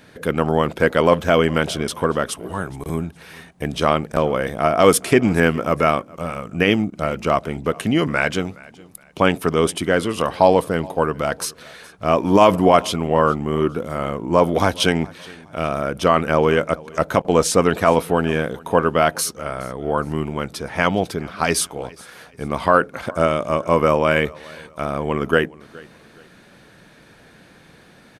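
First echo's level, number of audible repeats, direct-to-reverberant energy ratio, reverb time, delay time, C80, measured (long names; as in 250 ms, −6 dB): −23.0 dB, 2, no reverb audible, no reverb audible, 418 ms, no reverb audible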